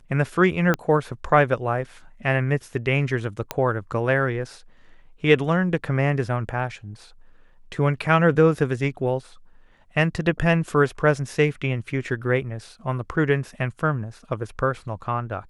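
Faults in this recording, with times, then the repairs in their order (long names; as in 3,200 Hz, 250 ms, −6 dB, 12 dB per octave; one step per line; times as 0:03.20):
0:00.74: click −9 dBFS
0:03.51: click −9 dBFS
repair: click removal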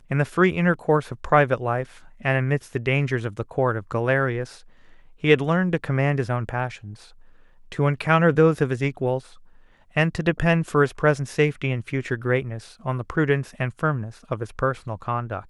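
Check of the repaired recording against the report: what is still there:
0:00.74: click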